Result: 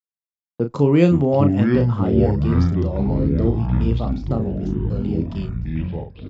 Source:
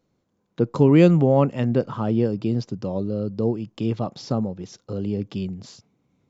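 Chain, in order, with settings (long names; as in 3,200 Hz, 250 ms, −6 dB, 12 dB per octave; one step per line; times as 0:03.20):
noise gate −35 dBFS, range −48 dB
double-tracking delay 35 ms −7.5 dB
delay with pitch and tempo change per echo 272 ms, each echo −6 semitones, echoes 3
level −1 dB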